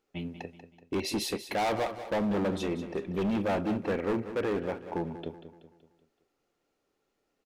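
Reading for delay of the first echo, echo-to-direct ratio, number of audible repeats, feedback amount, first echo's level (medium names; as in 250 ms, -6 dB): 189 ms, -11.0 dB, 4, 47%, -12.0 dB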